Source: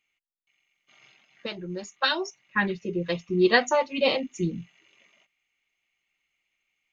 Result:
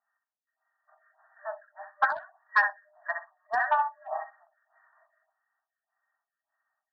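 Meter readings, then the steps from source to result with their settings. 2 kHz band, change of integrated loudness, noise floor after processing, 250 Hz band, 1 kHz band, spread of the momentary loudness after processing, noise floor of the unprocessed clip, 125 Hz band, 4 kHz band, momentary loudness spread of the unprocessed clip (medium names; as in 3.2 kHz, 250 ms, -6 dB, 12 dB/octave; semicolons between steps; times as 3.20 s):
-0.5 dB, -3.5 dB, under -85 dBFS, under -35 dB, +2.5 dB, 17 LU, -80 dBFS, under -40 dB, -23.5 dB, 16 LU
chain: thinning echo 63 ms, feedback 23%, high-pass 1.1 kHz, level -3.5 dB; compression 6:1, threshold -24 dBFS, peak gain reduction 9.5 dB; FFT band-pass 600–1900 Hz; Chebyshev shaper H 5 -20 dB, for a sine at -14.5 dBFS; lamp-driven phase shifter 1.7 Hz; trim +5.5 dB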